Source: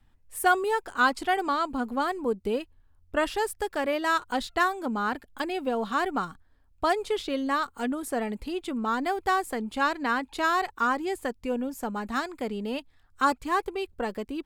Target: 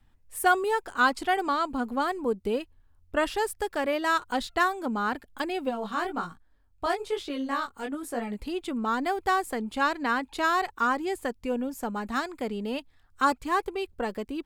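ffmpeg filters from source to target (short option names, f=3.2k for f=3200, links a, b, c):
-filter_complex "[0:a]asplit=3[a][b][c];[a]afade=t=out:st=5.69:d=0.02[d];[b]flanger=delay=17:depth=7.4:speed=1.1,afade=t=in:st=5.69:d=0.02,afade=t=out:st=8.36:d=0.02[e];[c]afade=t=in:st=8.36:d=0.02[f];[d][e][f]amix=inputs=3:normalize=0"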